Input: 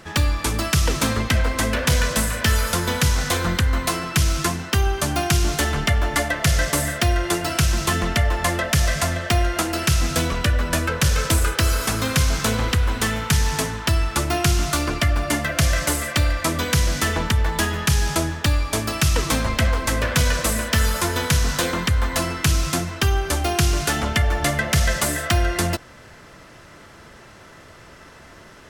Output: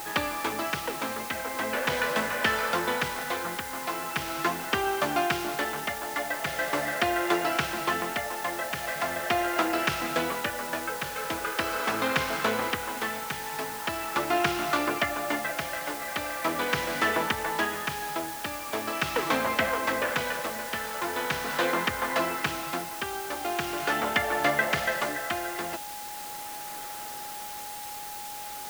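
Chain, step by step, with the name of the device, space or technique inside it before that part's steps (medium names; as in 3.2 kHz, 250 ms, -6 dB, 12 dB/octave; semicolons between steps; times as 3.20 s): shortwave radio (band-pass 340–2600 Hz; tremolo 0.41 Hz, depth 60%; whistle 830 Hz -39 dBFS; white noise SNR 11 dB)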